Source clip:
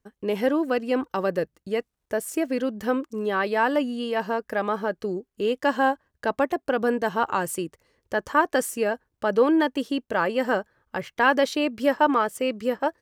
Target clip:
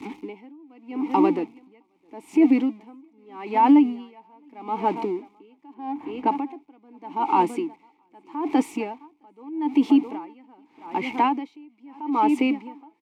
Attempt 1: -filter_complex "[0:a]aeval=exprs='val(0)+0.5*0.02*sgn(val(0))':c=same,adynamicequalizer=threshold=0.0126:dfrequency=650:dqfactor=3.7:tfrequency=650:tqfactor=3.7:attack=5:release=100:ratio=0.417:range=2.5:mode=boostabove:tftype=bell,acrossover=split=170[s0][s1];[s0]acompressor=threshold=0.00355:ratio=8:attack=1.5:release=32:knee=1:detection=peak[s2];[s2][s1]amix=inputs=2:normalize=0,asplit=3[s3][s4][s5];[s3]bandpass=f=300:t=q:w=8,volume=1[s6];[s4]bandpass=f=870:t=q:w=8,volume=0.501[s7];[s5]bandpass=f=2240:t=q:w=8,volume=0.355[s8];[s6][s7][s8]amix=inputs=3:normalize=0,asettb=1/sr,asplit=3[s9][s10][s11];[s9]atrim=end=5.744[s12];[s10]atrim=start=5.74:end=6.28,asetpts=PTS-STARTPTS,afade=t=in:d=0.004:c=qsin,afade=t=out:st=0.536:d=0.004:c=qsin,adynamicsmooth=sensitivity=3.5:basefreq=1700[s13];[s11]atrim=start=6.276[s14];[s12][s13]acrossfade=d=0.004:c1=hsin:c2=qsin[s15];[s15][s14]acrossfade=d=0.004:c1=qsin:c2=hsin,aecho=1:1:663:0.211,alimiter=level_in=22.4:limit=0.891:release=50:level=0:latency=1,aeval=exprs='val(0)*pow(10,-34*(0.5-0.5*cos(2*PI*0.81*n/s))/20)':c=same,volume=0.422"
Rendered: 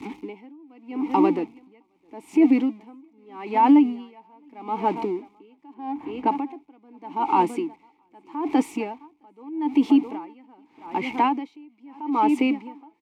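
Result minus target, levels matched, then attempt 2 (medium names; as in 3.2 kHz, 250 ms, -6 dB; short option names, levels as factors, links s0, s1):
compression: peak gain reduction -5.5 dB
-filter_complex "[0:a]aeval=exprs='val(0)+0.5*0.02*sgn(val(0))':c=same,adynamicequalizer=threshold=0.0126:dfrequency=650:dqfactor=3.7:tfrequency=650:tqfactor=3.7:attack=5:release=100:ratio=0.417:range=2.5:mode=boostabove:tftype=bell,acrossover=split=170[s0][s1];[s0]acompressor=threshold=0.00168:ratio=8:attack=1.5:release=32:knee=1:detection=peak[s2];[s2][s1]amix=inputs=2:normalize=0,asplit=3[s3][s4][s5];[s3]bandpass=f=300:t=q:w=8,volume=1[s6];[s4]bandpass=f=870:t=q:w=8,volume=0.501[s7];[s5]bandpass=f=2240:t=q:w=8,volume=0.355[s8];[s6][s7][s8]amix=inputs=3:normalize=0,asettb=1/sr,asplit=3[s9][s10][s11];[s9]atrim=end=5.744[s12];[s10]atrim=start=5.74:end=6.28,asetpts=PTS-STARTPTS,afade=t=in:d=0.004:c=qsin,afade=t=out:st=0.536:d=0.004:c=qsin,adynamicsmooth=sensitivity=3.5:basefreq=1700[s13];[s11]atrim=start=6.276[s14];[s12][s13]acrossfade=d=0.004:c1=hsin:c2=qsin[s15];[s15][s14]acrossfade=d=0.004:c1=qsin:c2=hsin,aecho=1:1:663:0.211,alimiter=level_in=22.4:limit=0.891:release=50:level=0:latency=1,aeval=exprs='val(0)*pow(10,-34*(0.5-0.5*cos(2*PI*0.81*n/s))/20)':c=same,volume=0.422"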